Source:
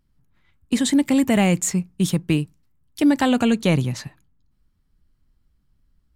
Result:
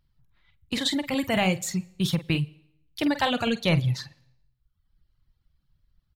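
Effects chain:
notch filter 420 Hz, Q 12
double-tracking delay 48 ms −7 dB
on a send at −16 dB: convolution reverb RT60 0.80 s, pre-delay 89 ms
on the sum: reverb reduction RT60 0.91 s
graphic EQ with 10 bands 125 Hz +5 dB, 250 Hz −10 dB, 4,000 Hz +7 dB, 8,000 Hz −10 dB
level −2 dB

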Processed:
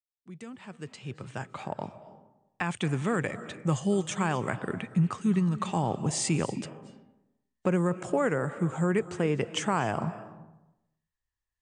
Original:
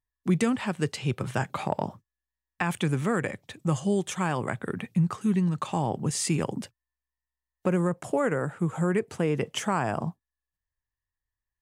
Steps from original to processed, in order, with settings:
fade in at the beginning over 3.48 s
Chebyshev low-pass filter 9,100 Hz, order 6
on a send: convolution reverb RT60 0.95 s, pre-delay 192 ms, DRR 14 dB

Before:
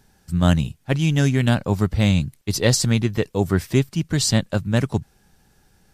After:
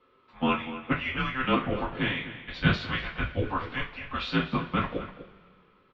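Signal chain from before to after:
slap from a distant wall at 42 metres, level −13 dB
single-sideband voice off tune −390 Hz 530–3,500 Hz
coupled-rooms reverb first 0.25 s, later 2 s, from −22 dB, DRR −6.5 dB
level −6 dB

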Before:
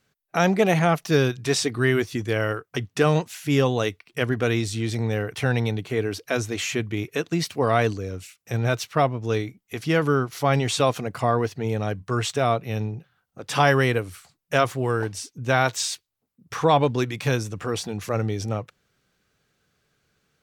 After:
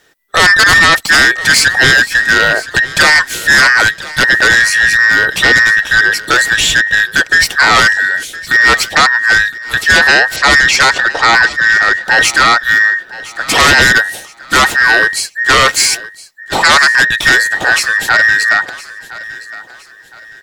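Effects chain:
frequency inversion band by band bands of 2,000 Hz
0:10.36–0:11.99: low-pass filter 6,600 Hz 24 dB per octave
sine wavefolder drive 14 dB, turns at −3.5 dBFS
on a send: repeating echo 1,014 ms, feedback 35%, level −18 dB

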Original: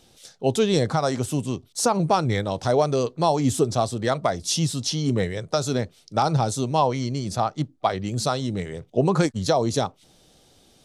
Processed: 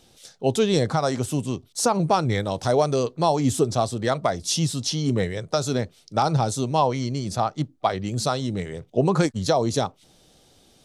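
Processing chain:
0:02.40–0:03.00: high-shelf EQ 9,900 Hz +9.5 dB

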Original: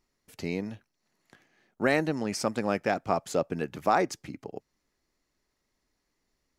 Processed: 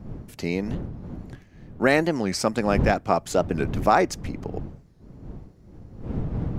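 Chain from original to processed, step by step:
wind on the microphone 180 Hz −38 dBFS
wow of a warped record 45 rpm, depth 160 cents
level +5.5 dB

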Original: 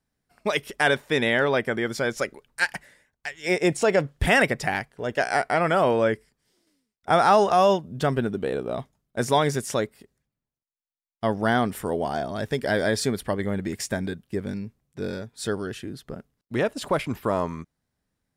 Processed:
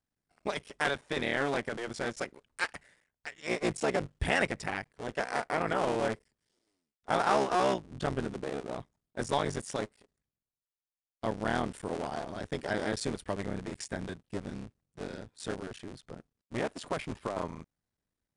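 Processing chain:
sub-harmonics by changed cycles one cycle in 3, muted
downsampling to 22,050 Hz
level −7.5 dB

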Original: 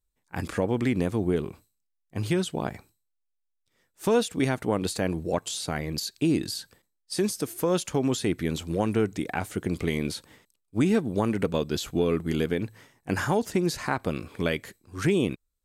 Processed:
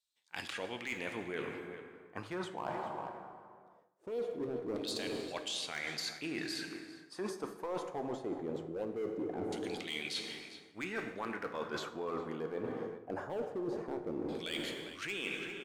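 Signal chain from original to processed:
auto-filter band-pass saw down 0.21 Hz 340–4,000 Hz
in parallel at −4 dB: wave folding −31 dBFS
on the sum: parametric band 2,200 Hz −5 dB 2.5 octaves
slap from a distant wall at 69 metres, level −16 dB
dense smooth reverb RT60 2.2 s, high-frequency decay 0.6×, DRR 6.5 dB
reversed playback
downward compressor 16 to 1, threshold −44 dBFS, peak gain reduction 25 dB
reversed playback
level +9 dB

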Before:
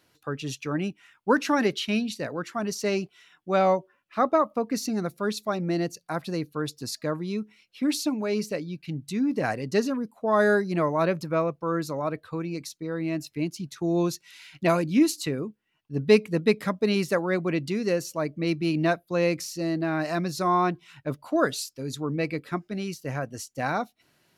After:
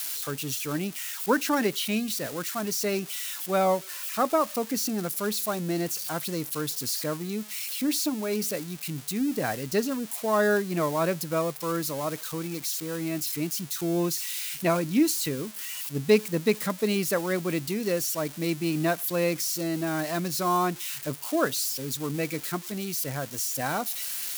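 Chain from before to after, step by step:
spike at every zero crossing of −23 dBFS
level −2 dB

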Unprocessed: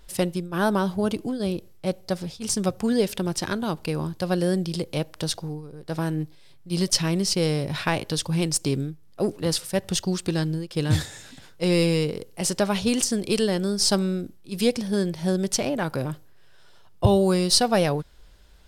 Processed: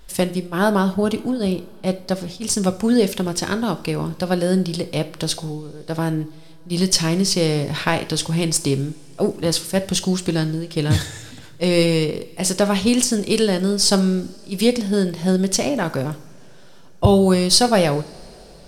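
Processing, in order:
coupled-rooms reverb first 0.47 s, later 4.5 s, from −22 dB, DRR 10 dB
level +4.5 dB

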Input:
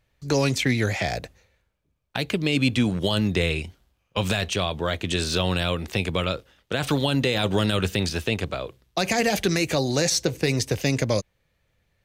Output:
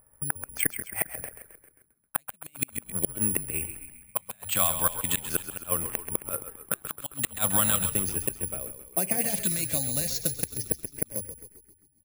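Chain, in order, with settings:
mains-hum notches 50/100 Hz
downward expander −53 dBFS
low-pass that shuts in the quiet parts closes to 1,100 Hz, open at −19.5 dBFS
parametric band 1,200 Hz +9 dB 1.9 octaves, from 0:07.76 −7 dB
upward compression, threshold −31 dBFS
transient designer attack +7 dB, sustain +2 dB
auto-filter notch square 0.38 Hz 400–3,900 Hz
gate with flip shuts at −7 dBFS, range −37 dB
echo with shifted repeats 133 ms, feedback 56%, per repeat −46 Hz, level −10.5 dB
bad sample-rate conversion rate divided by 4×, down filtered, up zero stuff
level −9.5 dB

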